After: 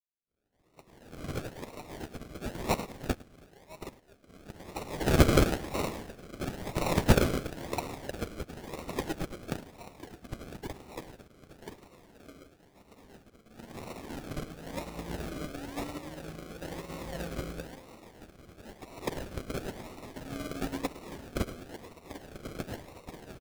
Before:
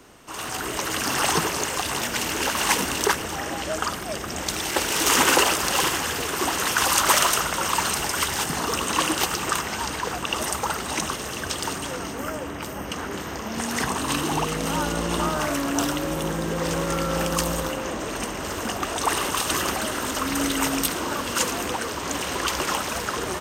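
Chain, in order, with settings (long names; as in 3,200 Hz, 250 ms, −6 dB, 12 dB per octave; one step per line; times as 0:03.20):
fade in at the beginning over 1.56 s
0:02.86–0:04.27: high-pass filter 580 Hz 24 dB per octave
sample-and-hold swept by an LFO 38×, swing 60% 0.99 Hz
repeating echo 106 ms, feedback 37%, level −10 dB
expander for the loud parts 2.5 to 1, over −41 dBFS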